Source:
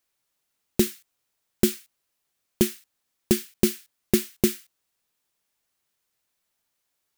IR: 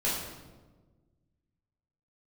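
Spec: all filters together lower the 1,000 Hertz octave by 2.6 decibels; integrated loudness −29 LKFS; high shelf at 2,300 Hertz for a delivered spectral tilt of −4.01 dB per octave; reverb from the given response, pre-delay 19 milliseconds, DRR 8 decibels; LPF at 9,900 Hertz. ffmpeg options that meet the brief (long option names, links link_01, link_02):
-filter_complex "[0:a]lowpass=9900,equalizer=frequency=1000:width_type=o:gain=-4.5,highshelf=frequency=2300:gain=4,asplit=2[link_01][link_02];[1:a]atrim=start_sample=2205,adelay=19[link_03];[link_02][link_03]afir=irnorm=-1:irlink=0,volume=-16.5dB[link_04];[link_01][link_04]amix=inputs=2:normalize=0,volume=-2.5dB"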